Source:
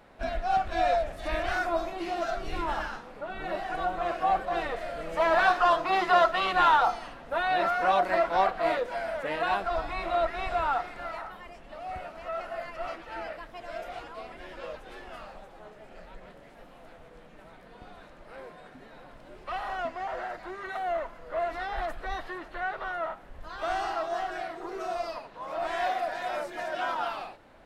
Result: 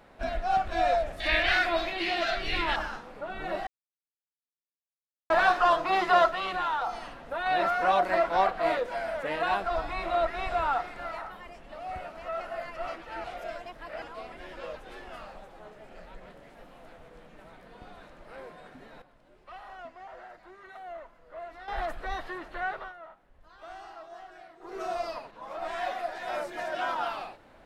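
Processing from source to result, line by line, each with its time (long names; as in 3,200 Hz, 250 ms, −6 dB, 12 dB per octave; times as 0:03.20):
0:01.20–0:02.76: flat-topped bell 2,800 Hz +12.5 dB
0:03.67–0:05.30: silence
0:06.28–0:07.46: downward compressor 2.5 to 1, threshold −30 dBFS
0:13.24–0:14.02: reverse
0:19.02–0:21.68: clip gain −11.5 dB
0:22.72–0:24.81: duck −14.5 dB, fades 0.22 s
0:25.31–0:26.28: string-ensemble chorus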